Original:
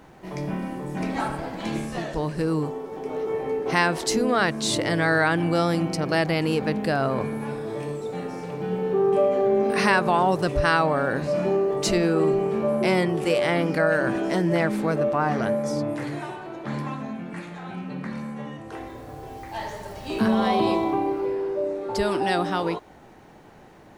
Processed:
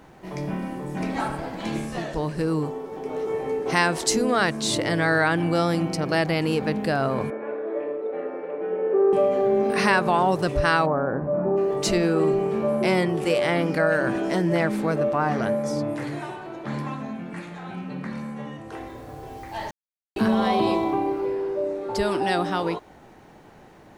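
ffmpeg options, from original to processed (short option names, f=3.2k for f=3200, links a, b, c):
-filter_complex "[0:a]asettb=1/sr,asplit=3[a][b][c];[a]atrim=end=3.164[d];[b]atrim=start=3.16:end=4.57,asetpts=PTS-STARTPTS,afade=t=in:d=0.004:c=qsin,afade=t=out:st=1.406:d=0.004:c=qsin,equalizer=f=7.9k:w=1:g=5.5[e];[c]atrim=start=4.566[f];[d][e]acrossfade=d=0.004:c1=hsin:c2=qsin[g];[g][f]acrossfade=d=0.004:c1=qsin:c2=hsin,asettb=1/sr,asplit=3[h][i][j];[h]atrim=end=7.304[k];[i]atrim=start=7.3:end=9.13,asetpts=PTS-STARTPTS,afade=t=in:d=0.004:c=qsin,afade=t=out:st=1.826:d=0.004:c=qsin,highpass=f=300:w=0.5412,highpass=f=300:w=1.3066,equalizer=f=340:t=q:w=4:g=4,equalizer=f=570:t=q:w=4:g=10,equalizer=f=860:t=q:w=4:g=-6,lowpass=f=2.2k:w=0.5412,lowpass=f=2.2k:w=1.3066[l];[j]atrim=start=9.126[m];[k][l]acrossfade=d=0.004:c1=hsin:c2=qsin[n];[n][m]acrossfade=d=0.004:c1=qsin:c2=hsin,asplit=3[o][p][q];[o]afade=t=out:st=10.85:d=0.02[r];[p]lowpass=f=1.3k:w=0.5412,lowpass=f=1.3k:w=1.3066,afade=t=in:st=10.85:d=0.02,afade=t=out:st=11.56:d=0.02[s];[q]afade=t=in:st=11.56:d=0.02[t];[r][s][t]amix=inputs=3:normalize=0,asplit=3[u][v][w];[u]atrim=end=19.71,asetpts=PTS-STARTPTS,afade=t=out:st=19.706:d=0.004:c=hsin[x];[v]atrim=start=19.71:end=20.16,asetpts=PTS-STARTPTS,volume=0[y];[w]atrim=start=20.16,asetpts=PTS-STARTPTS,afade=t=in:d=0.004:c=hsin[z];[x][y][z]concat=n=3:v=0:a=1"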